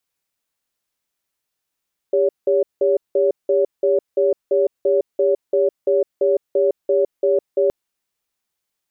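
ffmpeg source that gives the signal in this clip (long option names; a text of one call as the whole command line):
ffmpeg -f lavfi -i "aevalsrc='0.158*(sin(2*PI*399*t)+sin(2*PI*564*t))*clip(min(mod(t,0.34),0.16-mod(t,0.34))/0.005,0,1)':duration=5.57:sample_rate=44100" out.wav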